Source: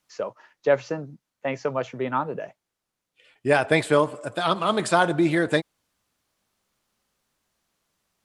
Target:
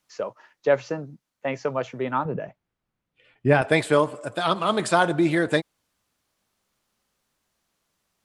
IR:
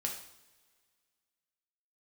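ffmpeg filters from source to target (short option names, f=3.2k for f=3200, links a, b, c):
-filter_complex "[0:a]asettb=1/sr,asplit=3[a][b][c];[a]atrim=end=2.254[d];[b]atrim=start=2.25:end=3.62,asetpts=PTS-STARTPTS,afade=t=in:d=0.004:c=qsin,afade=t=out:st=1.366:d=0.004:c=qsin,bass=f=250:g=10,treble=f=4k:g=-13[e];[c]atrim=start=3.616[f];[d][e]acrossfade=d=0.004:c1=hsin:c2=qsin[g];[g][f]acrossfade=d=0.004:c1=qsin:c2=hsin"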